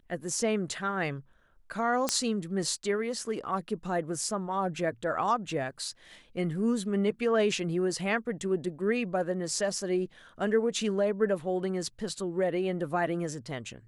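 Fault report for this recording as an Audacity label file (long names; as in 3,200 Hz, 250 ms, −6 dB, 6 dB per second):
2.090000	2.090000	click −10 dBFS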